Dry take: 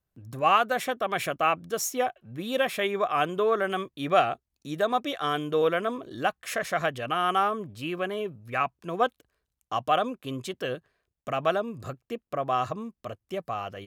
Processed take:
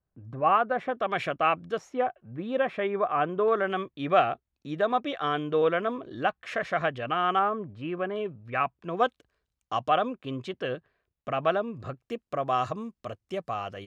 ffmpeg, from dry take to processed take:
ffmpeg -i in.wav -af "asetnsamples=nb_out_samples=441:pad=0,asendcmd='0.95 lowpass f 3500;1.78 lowpass f 1700;3.48 lowpass f 3100;7.39 lowpass f 1800;8.16 lowpass f 3000;8.97 lowpass f 6100;9.89 lowpass f 3300;12.01 lowpass f 8000',lowpass=1500" out.wav

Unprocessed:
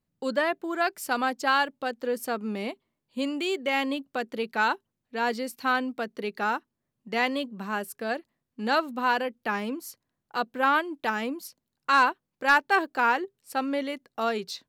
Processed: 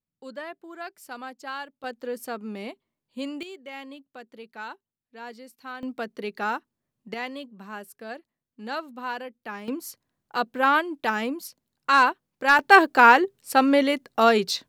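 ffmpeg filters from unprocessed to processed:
ffmpeg -i in.wav -af "asetnsamples=nb_out_samples=441:pad=0,asendcmd='1.84 volume volume -3.5dB;3.43 volume volume -13dB;5.83 volume volume -0.5dB;7.14 volume volume -7.5dB;9.68 volume volume 2.5dB;12.59 volume volume 9.5dB',volume=-11.5dB" out.wav

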